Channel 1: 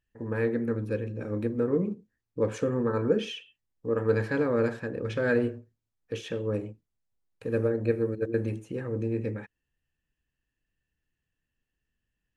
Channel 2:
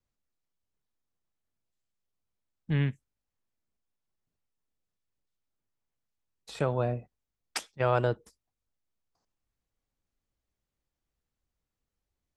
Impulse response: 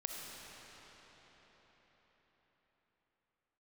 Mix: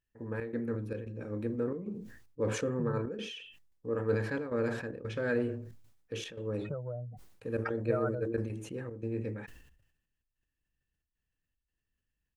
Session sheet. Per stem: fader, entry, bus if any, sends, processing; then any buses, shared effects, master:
-6.0 dB, 0.00 s, no send, trance gate "xxx.xxx.xx" 113 bpm -12 dB
-3.5 dB, 0.10 s, no send, spectral contrast enhancement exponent 2.7; compression 5:1, threshold -33 dBFS, peak gain reduction 10.5 dB; resonant low-pass 1.4 kHz, resonance Q 6.7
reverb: none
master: decay stretcher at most 65 dB/s

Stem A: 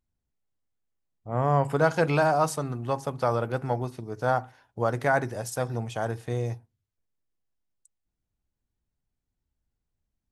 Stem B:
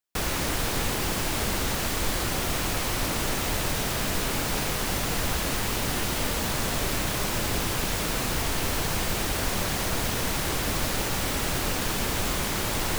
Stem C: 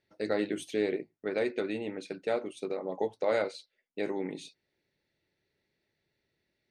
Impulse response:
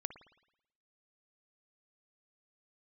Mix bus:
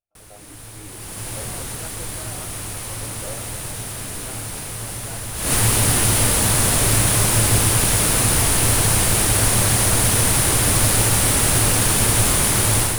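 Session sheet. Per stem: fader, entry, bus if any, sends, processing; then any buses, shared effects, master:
-19.5 dB, 0.00 s, no send, none
0.82 s -22 dB -> 1.26 s -13.5 dB -> 5.33 s -13.5 dB -> 5.53 s -0.5 dB, 0.00 s, no send, peaking EQ 9.7 kHz +15 dB 0.48 oct; level rider gain up to 8 dB
-6.0 dB, 0.00 s, no send, stepped vowel filter 2.4 Hz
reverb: none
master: peaking EQ 110 Hz +14 dB 0.27 oct

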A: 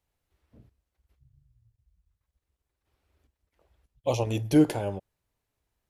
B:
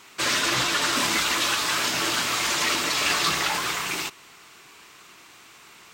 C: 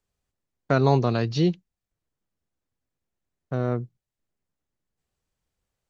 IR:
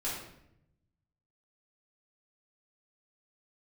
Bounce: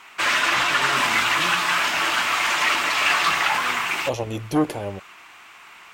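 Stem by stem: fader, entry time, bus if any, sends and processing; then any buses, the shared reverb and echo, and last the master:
+2.0 dB, 0.00 s, no send, none
-4.0 dB, 0.00 s, no send, high-order bell 1.4 kHz +10 dB 2.5 oct
-19.0 dB, 0.00 s, send -4.5 dB, none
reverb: on, RT60 0.75 s, pre-delay 3 ms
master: peaking EQ 120 Hz -6.5 dB 0.24 oct; transformer saturation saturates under 720 Hz

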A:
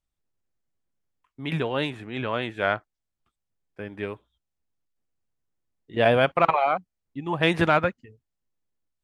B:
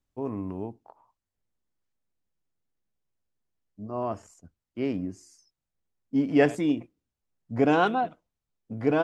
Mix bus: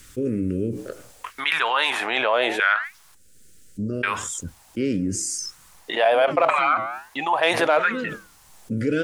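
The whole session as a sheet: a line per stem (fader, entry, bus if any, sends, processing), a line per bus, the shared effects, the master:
-0.5 dB, 0.00 s, muted 3.15–4.03 s, no send, peaking EQ 8 kHz -10.5 dB 0.55 oct; LFO high-pass saw down 0.77 Hz 490–1600 Hz
-5.0 dB, 0.00 s, no send, elliptic band-stop 540–1400 Hz; auto duck -14 dB, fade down 0.20 s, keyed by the first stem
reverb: none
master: peaking EQ 8.5 kHz +13 dB 1.1 oct; flange 0.66 Hz, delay 1.7 ms, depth 6.8 ms, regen -88%; level flattener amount 70%

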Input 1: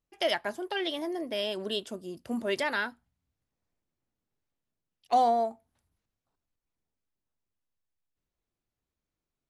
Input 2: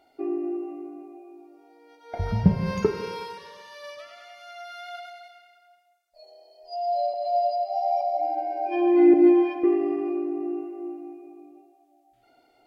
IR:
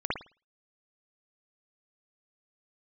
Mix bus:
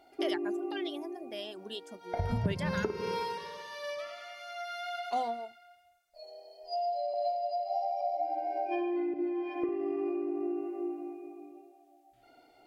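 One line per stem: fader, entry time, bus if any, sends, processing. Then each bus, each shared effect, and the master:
-8.0 dB, 0.00 s, no send, reverb removal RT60 1.4 s
-0.5 dB, 0.00 s, send -16 dB, compression 16:1, threshold -29 dBFS, peak gain reduction 18.5 dB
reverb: on, pre-delay 53 ms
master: none

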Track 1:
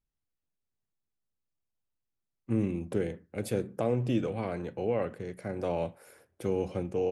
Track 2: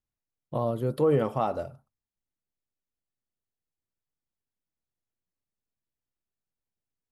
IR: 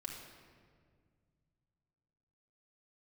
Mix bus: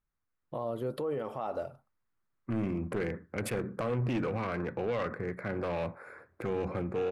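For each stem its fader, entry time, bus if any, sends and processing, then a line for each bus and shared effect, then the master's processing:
+0.5 dB, 0.00 s, no send, local Wiener filter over 15 samples; high-order bell 1.7 kHz +10.5 dB; saturation -25.5 dBFS, distortion -12 dB
-4.0 dB, 0.00 s, no send, tone controls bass -8 dB, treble -6 dB; compression, threshold -28 dBFS, peak gain reduction 8.5 dB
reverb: none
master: level rider gain up to 5 dB; peak limiter -26 dBFS, peak gain reduction 7.5 dB

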